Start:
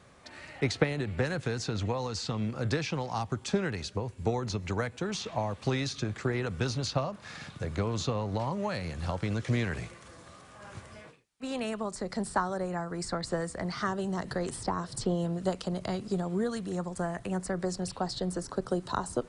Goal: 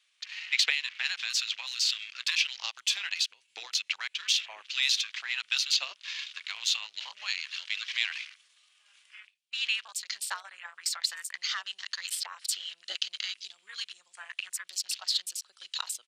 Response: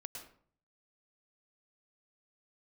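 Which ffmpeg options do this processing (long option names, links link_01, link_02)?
-af "highpass=frequency=2900:width_type=q:width=2.8,atempo=1.2,afwtdn=0.00316,volume=7.5dB"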